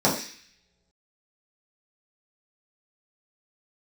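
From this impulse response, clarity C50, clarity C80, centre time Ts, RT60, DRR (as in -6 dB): 7.0 dB, 10.5 dB, 30 ms, no single decay rate, -7.0 dB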